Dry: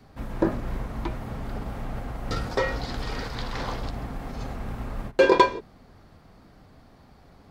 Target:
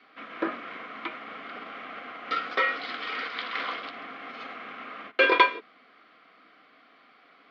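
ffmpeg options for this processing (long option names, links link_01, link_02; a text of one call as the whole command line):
ffmpeg -i in.wav -af "asuperstop=centerf=890:order=4:qfactor=5.8,highpass=frequency=320:width=0.5412,highpass=frequency=320:width=1.3066,equalizer=frequency=380:width_type=q:width=4:gain=-9,equalizer=frequency=570:width_type=q:width=4:gain=-7,equalizer=frequency=850:width_type=q:width=4:gain=-4,equalizer=frequency=1300:width_type=q:width=4:gain=8,equalizer=frequency=2200:width_type=q:width=4:gain=10,equalizer=frequency=3100:width_type=q:width=4:gain=7,lowpass=frequency=4000:width=0.5412,lowpass=frequency=4000:width=1.3066" out.wav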